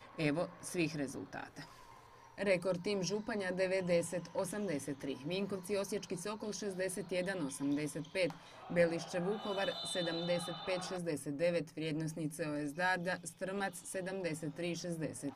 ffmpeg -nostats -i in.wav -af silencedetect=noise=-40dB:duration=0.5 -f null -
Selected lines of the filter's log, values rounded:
silence_start: 1.62
silence_end: 2.38 | silence_duration: 0.76